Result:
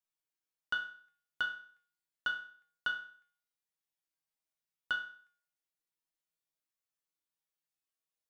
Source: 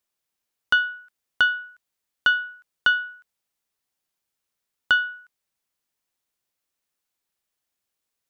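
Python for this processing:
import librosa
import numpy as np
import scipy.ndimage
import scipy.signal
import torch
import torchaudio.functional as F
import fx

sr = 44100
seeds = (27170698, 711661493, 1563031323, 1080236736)

y = fx.comb_fb(x, sr, f0_hz=160.0, decay_s=0.49, harmonics='all', damping=0.0, mix_pct=90)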